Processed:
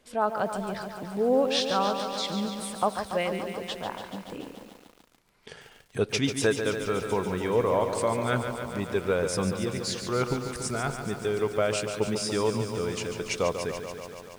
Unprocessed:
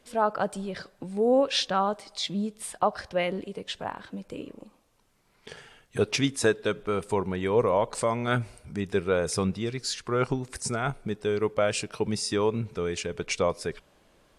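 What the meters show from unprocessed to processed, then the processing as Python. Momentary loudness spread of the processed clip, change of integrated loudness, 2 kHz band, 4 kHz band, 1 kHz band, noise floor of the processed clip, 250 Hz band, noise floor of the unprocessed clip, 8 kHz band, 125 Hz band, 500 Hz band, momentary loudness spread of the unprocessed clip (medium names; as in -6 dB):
11 LU, -0.5 dB, 0.0 dB, 0.0 dB, 0.0 dB, -58 dBFS, 0.0 dB, -65 dBFS, 0.0 dB, -0.5 dB, 0.0 dB, 13 LU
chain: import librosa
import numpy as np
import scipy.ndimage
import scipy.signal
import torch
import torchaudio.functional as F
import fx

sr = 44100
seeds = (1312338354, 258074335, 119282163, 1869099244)

y = fx.echo_crushed(x, sr, ms=143, feedback_pct=80, bits=8, wet_db=-8.0)
y = y * 10.0 ** (-1.5 / 20.0)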